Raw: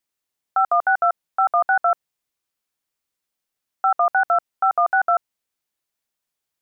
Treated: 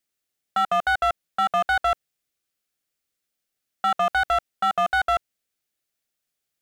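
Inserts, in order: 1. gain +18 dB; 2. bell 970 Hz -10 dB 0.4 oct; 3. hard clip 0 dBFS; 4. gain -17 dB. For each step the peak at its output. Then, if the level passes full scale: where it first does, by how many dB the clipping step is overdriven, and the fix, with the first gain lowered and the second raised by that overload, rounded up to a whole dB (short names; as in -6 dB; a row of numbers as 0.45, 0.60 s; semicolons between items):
+7.5, +6.0, 0.0, -17.0 dBFS; step 1, 6.0 dB; step 1 +12 dB, step 4 -11 dB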